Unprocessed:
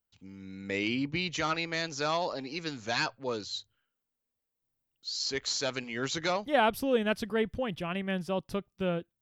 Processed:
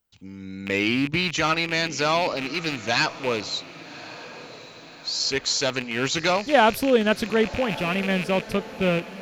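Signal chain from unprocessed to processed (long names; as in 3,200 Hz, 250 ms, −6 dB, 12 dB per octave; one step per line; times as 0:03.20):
loose part that buzzes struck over −42 dBFS, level −27 dBFS
on a send: feedback delay with all-pass diffusion 1,147 ms, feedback 51%, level −16 dB
on the sum: level +8 dB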